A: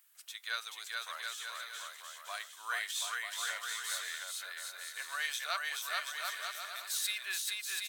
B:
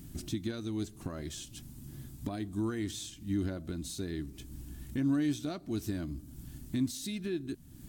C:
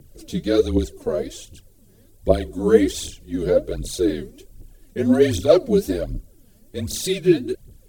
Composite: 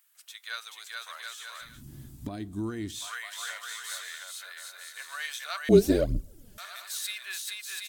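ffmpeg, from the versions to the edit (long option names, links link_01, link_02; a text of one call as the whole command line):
ffmpeg -i take0.wav -i take1.wav -i take2.wav -filter_complex "[0:a]asplit=3[link_01][link_02][link_03];[link_01]atrim=end=1.83[link_04];[1:a]atrim=start=1.59:end=3.1[link_05];[link_02]atrim=start=2.86:end=5.692[link_06];[2:a]atrim=start=5.688:end=6.582[link_07];[link_03]atrim=start=6.578[link_08];[link_04][link_05]acrossfade=duration=0.24:curve1=tri:curve2=tri[link_09];[link_09][link_06]acrossfade=duration=0.24:curve1=tri:curve2=tri[link_10];[link_10][link_07]acrossfade=duration=0.004:curve1=hsin:curve2=hsin[link_11];[link_11][link_08]acrossfade=duration=0.004:curve1=hsin:curve2=hsin" out.wav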